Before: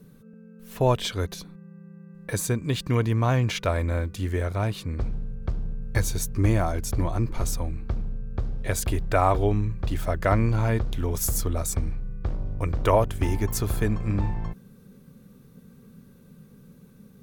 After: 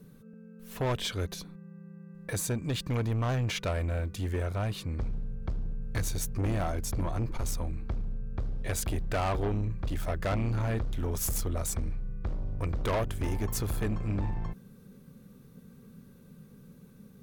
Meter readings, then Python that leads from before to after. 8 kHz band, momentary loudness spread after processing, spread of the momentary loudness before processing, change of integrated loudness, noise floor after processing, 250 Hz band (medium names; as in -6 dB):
-4.5 dB, 15 LU, 11 LU, -6.5 dB, -54 dBFS, -6.0 dB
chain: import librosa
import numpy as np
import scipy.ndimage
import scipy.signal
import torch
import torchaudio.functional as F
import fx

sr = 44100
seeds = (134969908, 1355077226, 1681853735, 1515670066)

y = 10.0 ** (-23.0 / 20.0) * np.tanh(x / 10.0 ** (-23.0 / 20.0))
y = y * librosa.db_to_amplitude(-2.0)